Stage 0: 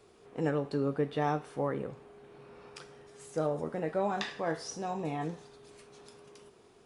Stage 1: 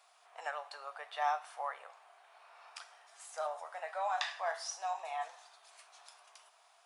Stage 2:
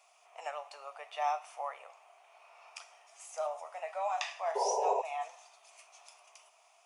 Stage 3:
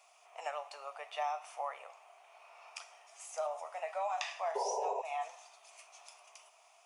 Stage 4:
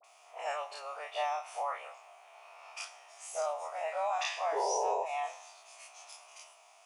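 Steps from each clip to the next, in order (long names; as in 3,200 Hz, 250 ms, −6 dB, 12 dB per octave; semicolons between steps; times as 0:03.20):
Chebyshev high-pass filter 660 Hz, order 5; level +1 dB
thirty-one-band graphic EQ 630 Hz +4 dB, 1,600 Hz −11 dB, 2,500 Hz +7 dB, 4,000 Hz −7 dB, 6,300 Hz +6 dB; sound drawn into the spectrogram noise, 0:04.55–0:05.02, 390–1,000 Hz −31 dBFS
downward compressor 6 to 1, threshold −33 dBFS, peak gain reduction 8 dB; level +1 dB
every bin's largest magnitude spread in time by 60 ms; all-pass dispersion highs, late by 42 ms, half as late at 1,300 Hz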